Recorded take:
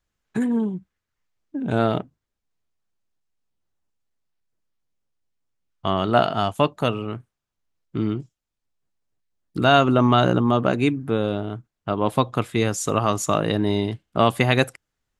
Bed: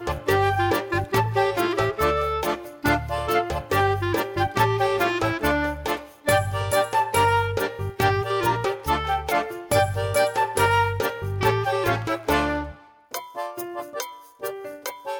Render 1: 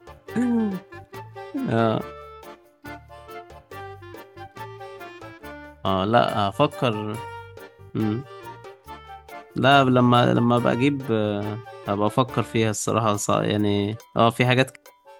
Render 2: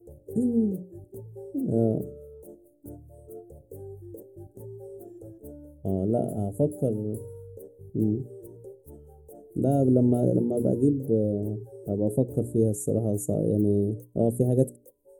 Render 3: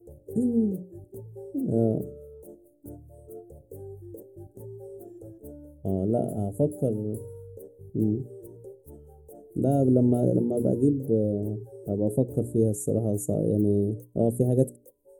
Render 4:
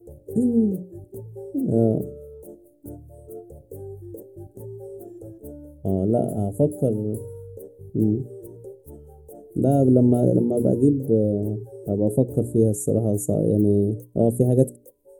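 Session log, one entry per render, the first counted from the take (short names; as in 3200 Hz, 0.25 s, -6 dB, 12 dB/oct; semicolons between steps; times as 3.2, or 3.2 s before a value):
add bed -17 dB
elliptic band-stop 500–8800 Hz, stop band 40 dB; notches 60/120/180/240/300/360/420 Hz
nothing audible
gain +4.5 dB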